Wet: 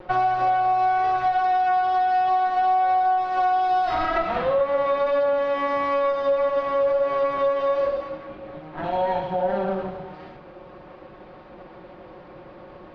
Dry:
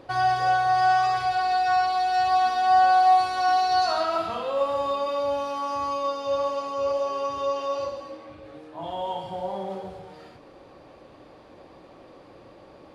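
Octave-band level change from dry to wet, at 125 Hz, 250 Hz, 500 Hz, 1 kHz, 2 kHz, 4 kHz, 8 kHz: +2.5 dB, +5.0 dB, +5.5 dB, +1.0 dB, -0.5 dB, -7.0 dB, no reading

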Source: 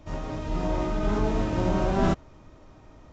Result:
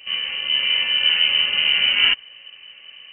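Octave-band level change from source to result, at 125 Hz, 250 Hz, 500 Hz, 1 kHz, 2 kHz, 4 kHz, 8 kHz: under -20 dB, under -20 dB, -16.0 dB, -7.0 dB, +19.5 dB, +31.5 dB, no reading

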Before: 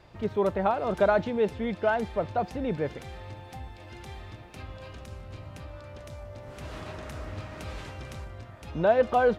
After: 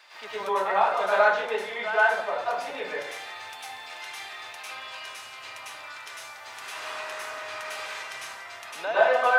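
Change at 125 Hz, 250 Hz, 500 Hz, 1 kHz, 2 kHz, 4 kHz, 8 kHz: under -20 dB, -15.5 dB, -1.0 dB, +4.5 dB, +10.5 dB, +10.0 dB, +11.5 dB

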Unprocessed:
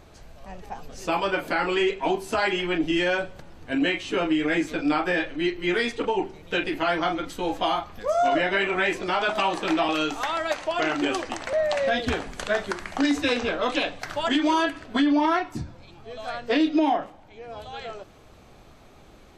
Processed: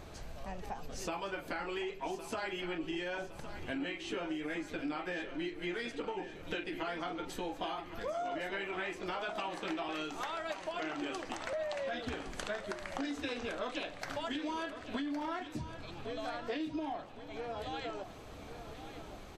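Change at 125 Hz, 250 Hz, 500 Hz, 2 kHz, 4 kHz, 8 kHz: -10.0 dB, -14.5 dB, -13.5 dB, -14.0 dB, -13.5 dB, -10.0 dB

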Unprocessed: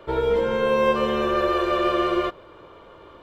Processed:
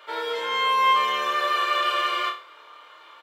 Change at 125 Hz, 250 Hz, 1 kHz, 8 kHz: under -25 dB, -19.5 dB, +4.0 dB, no reading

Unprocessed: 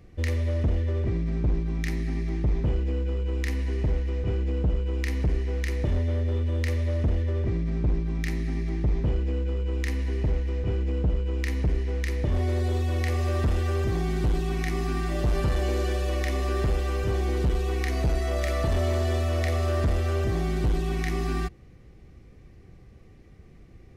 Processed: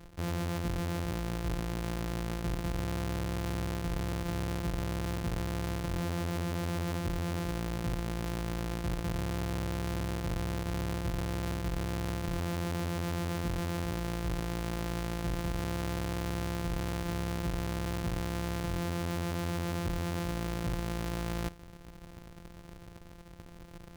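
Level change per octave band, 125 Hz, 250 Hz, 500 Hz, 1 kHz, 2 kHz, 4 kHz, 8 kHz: -8.5 dB, -3.0 dB, -7.5 dB, -2.0 dB, -4.5 dB, -2.0 dB, no reading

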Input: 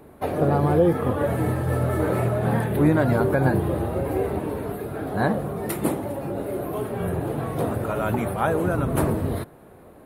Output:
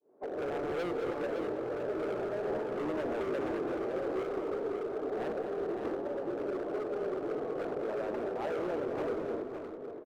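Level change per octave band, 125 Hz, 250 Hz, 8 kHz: -27.0 dB, -13.5 dB, under -20 dB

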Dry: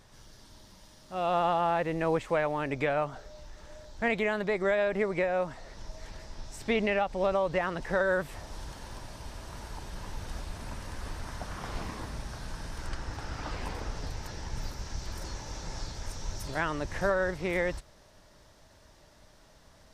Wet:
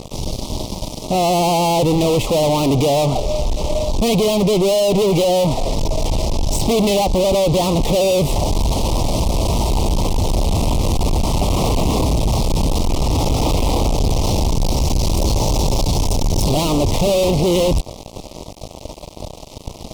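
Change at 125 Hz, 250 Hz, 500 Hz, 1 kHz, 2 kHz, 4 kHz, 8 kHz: +21.5 dB, +18.0 dB, +13.5 dB, +12.0 dB, +1.5 dB, +21.0 dB, +22.5 dB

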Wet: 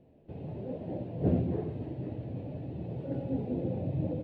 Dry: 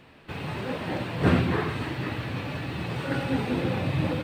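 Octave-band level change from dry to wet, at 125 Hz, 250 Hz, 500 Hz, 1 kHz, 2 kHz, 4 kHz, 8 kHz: -5.5 dB, -5.5 dB, -5.5 dB, -16.0 dB, under -25 dB, under -25 dB, under -30 dB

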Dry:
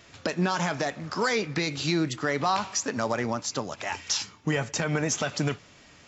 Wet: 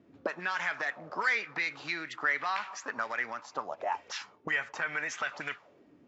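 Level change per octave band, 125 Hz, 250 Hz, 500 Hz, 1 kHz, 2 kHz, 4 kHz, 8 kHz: -23.5 dB, -18.5 dB, -11.0 dB, -4.5 dB, +1.5 dB, -10.5 dB, no reading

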